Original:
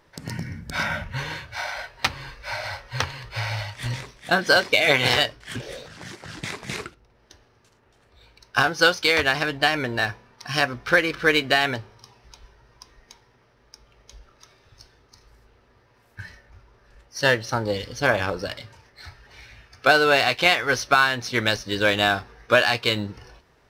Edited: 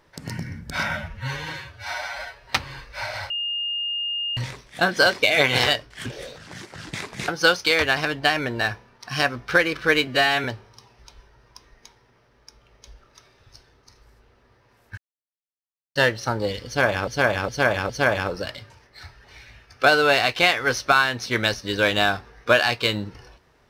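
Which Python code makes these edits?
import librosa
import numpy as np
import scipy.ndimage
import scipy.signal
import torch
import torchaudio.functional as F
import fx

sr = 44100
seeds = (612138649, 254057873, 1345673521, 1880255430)

y = fx.edit(x, sr, fx.stretch_span(start_s=0.97, length_s=1.0, factor=1.5),
    fx.bleep(start_s=2.8, length_s=1.07, hz=2830.0, db=-24.0),
    fx.cut(start_s=6.78, length_s=1.88),
    fx.stretch_span(start_s=11.45, length_s=0.25, factor=1.5),
    fx.silence(start_s=16.23, length_s=0.98),
    fx.repeat(start_s=17.92, length_s=0.41, count=4), tone=tone)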